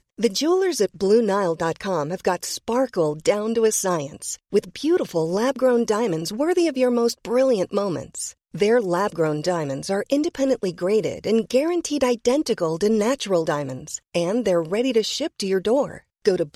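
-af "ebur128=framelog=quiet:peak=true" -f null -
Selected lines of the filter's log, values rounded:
Integrated loudness:
  I:         -22.1 LUFS
  Threshold: -32.1 LUFS
Loudness range:
  LRA:         1.5 LU
  Threshold: -42.2 LUFS
  LRA low:   -23.0 LUFS
  LRA high:  -21.5 LUFS
True peak:
  Peak:       -5.7 dBFS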